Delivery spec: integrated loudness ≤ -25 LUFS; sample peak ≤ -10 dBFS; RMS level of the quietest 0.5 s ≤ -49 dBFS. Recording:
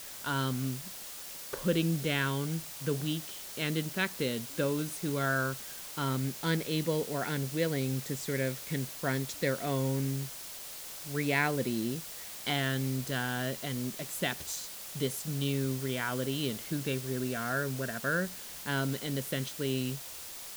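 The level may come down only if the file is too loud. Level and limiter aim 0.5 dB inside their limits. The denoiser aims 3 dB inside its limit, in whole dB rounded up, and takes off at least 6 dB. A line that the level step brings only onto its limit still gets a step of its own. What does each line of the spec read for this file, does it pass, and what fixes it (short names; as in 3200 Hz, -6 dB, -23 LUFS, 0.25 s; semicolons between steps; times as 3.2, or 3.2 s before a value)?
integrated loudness -33.0 LUFS: OK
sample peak -15.0 dBFS: OK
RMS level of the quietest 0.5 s -44 dBFS: fail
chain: denoiser 8 dB, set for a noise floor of -44 dBFS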